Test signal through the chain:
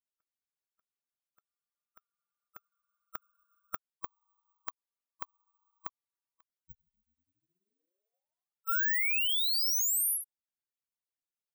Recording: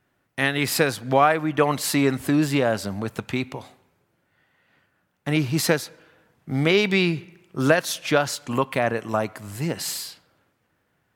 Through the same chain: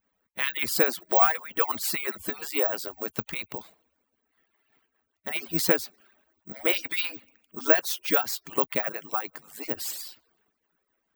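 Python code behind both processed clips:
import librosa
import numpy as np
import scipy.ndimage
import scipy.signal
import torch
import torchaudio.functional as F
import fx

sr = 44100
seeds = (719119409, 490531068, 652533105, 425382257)

y = fx.hpss_only(x, sr, part='percussive')
y = (np.kron(scipy.signal.resample_poly(y, 1, 2), np.eye(2)[0]) * 2)[:len(y)]
y = y * 10.0 ** (-4.0 / 20.0)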